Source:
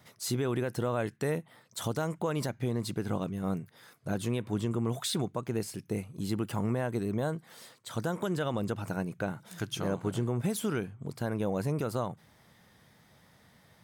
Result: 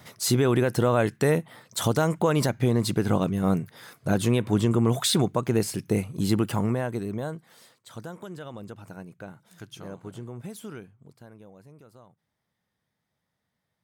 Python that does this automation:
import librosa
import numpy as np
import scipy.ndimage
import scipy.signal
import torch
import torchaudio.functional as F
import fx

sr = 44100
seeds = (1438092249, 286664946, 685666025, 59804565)

y = fx.gain(x, sr, db=fx.line((6.34, 9.0), (7.02, 1.0), (8.28, -8.0), (10.73, -8.0), (11.58, -20.0)))